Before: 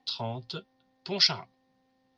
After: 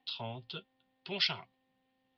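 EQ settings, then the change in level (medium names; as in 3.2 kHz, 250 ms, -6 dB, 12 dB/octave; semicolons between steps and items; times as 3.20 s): resonant low-pass 3 kHz, resonance Q 3; -7.5 dB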